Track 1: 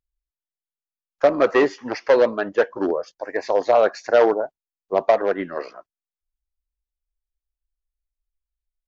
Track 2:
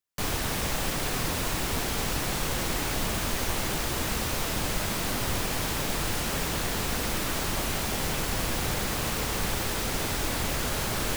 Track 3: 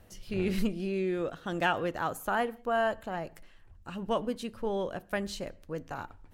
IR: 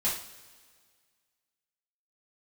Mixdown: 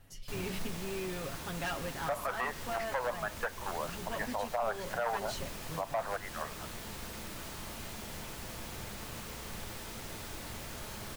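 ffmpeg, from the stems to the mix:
-filter_complex "[0:a]highpass=f=790:w=0.5412,highpass=f=790:w=1.3066,equalizer=f=5.3k:w=0.55:g=-14.5,adelay=850,volume=-1dB[a];[1:a]adelay=100,volume=-16.5dB,asplit=2[b][c];[c]volume=-12dB[d];[2:a]equalizer=f=510:w=0.67:g=-6.5,aecho=1:1:7.3:0.77,asoftclip=type=tanh:threshold=-29.5dB,volume=-2.5dB[e];[3:a]atrim=start_sample=2205[f];[d][f]afir=irnorm=-1:irlink=0[g];[a][b][e][g]amix=inputs=4:normalize=0,alimiter=limit=-23.5dB:level=0:latency=1:release=205"

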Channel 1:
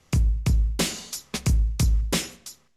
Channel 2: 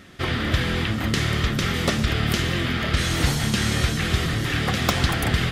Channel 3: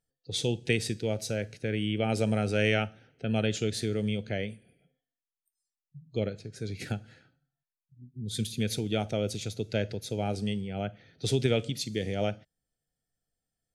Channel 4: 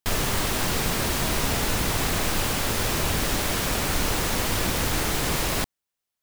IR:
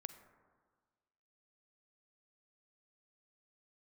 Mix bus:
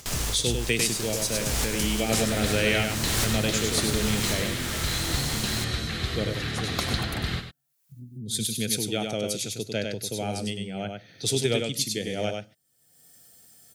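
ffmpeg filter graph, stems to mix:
-filter_complex "[0:a]bass=f=250:g=0,treble=f=4k:g=12,volume=-11.5dB[a];[1:a]equalizer=f=4.1k:w=6.4:g=11.5,adelay=1900,volume=-11dB,asplit=3[b][c][d];[c]volume=-4.5dB[e];[d]volume=-6.5dB[f];[2:a]highpass=110,crystalizer=i=2.5:c=0,volume=0dB,asplit=3[g][h][i];[h]volume=-4.5dB[j];[3:a]equalizer=f=7.4k:w=0.54:g=9,dynaudnorm=f=340:g=5:m=11.5dB,volume=-9dB,afade=t=out:st=4.33:d=0.23:silence=0.354813[k];[i]apad=whole_len=274476[l];[k][l]sidechaincompress=threshold=-34dB:ratio=8:attack=16:release=448[m];[4:a]atrim=start_sample=2205[n];[e][n]afir=irnorm=-1:irlink=0[o];[f][j]amix=inputs=2:normalize=0,aecho=0:1:99:1[p];[a][b][g][m][o][p]amix=inputs=6:normalize=0,acompressor=mode=upward:threshold=-34dB:ratio=2.5"

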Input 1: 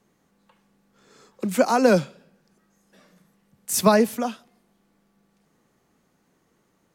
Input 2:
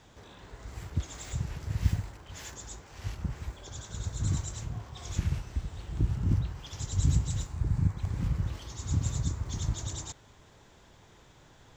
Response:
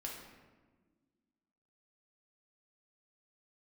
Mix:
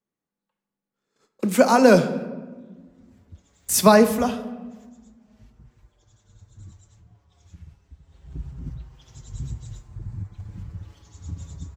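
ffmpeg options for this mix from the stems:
-filter_complex "[0:a]agate=range=-26dB:threshold=-50dB:ratio=16:detection=peak,volume=0.5dB,asplit=2[a][b];[b]volume=-4dB[c];[1:a]lowshelf=f=430:g=4.5,asplit=2[d][e];[e]adelay=6.3,afreqshift=-0.26[f];[d][f]amix=inputs=2:normalize=1,adelay=2350,volume=-7.5dB,afade=t=in:st=8.01:d=0.35:silence=0.334965[g];[2:a]atrim=start_sample=2205[h];[c][h]afir=irnorm=-1:irlink=0[i];[a][g][i]amix=inputs=3:normalize=0"

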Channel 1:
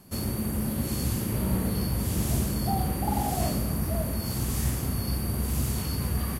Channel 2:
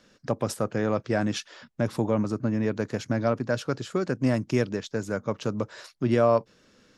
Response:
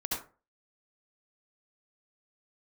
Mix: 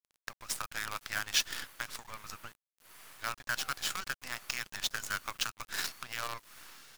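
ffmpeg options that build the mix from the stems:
-filter_complex "[0:a]acrossover=split=2600[a][b];[b]acompressor=threshold=-51dB:ratio=4:attack=1:release=60[c];[a][c]amix=inputs=2:normalize=0,tremolo=f=1.4:d=0.95,adelay=900,volume=-13dB[d];[1:a]acompressor=threshold=-30dB:ratio=20,volume=0.5dB,asplit=3[e][f][g];[e]atrim=end=2.52,asetpts=PTS-STARTPTS,afade=t=out:st=2.516:d=0.004:c=hsin[h];[f]atrim=start=2.52:end=3.19,asetpts=PTS-STARTPTS,volume=0[i];[g]atrim=start=3.19,asetpts=PTS-STARTPTS,afade=t=in:d=0.004:c=hsin[j];[h][i][j]concat=n=3:v=0:a=1,asplit=2[k][l];[l]apad=whole_len=321506[m];[d][m]sidechaincompress=threshold=-32dB:ratio=12:attack=12:release=525[n];[n][k]amix=inputs=2:normalize=0,highpass=f=1.2k:w=0.5412,highpass=f=1.2k:w=1.3066,dynaudnorm=f=350:g=3:m=10.5dB,acrusher=bits=6:dc=4:mix=0:aa=0.000001"

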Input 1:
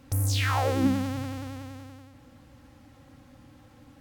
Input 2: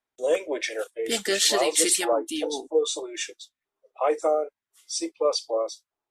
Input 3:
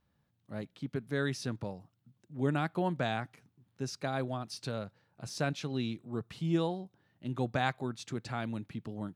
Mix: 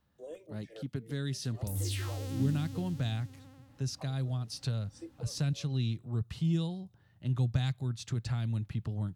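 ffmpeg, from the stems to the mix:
-filter_complex "[0:a]adelay=1550,volume=-8dB[a];[1:a]equalizer=f=6.3k:w=0.34:g=-15,volume=-11dB[b];[2:a]asubboost=boost=8:cutoff=90,acontrast=66,volume=-4.5dB,asplit=2[c][d];[d]apad=whole_len=269391[e];[b][e]sidechaincompress=threshold=-48dB:ratio=8:attack=22:release=116[f];[a][f][c]amix=inputs=3:normalize=0,bandreject=f=2.3k:w=21,acrossover=split=290|3000[g][h][i];[h]acompressor=threshold=-47dB:ratio=6[j];[g][j][i]amix=inputs=3:normalize=0"

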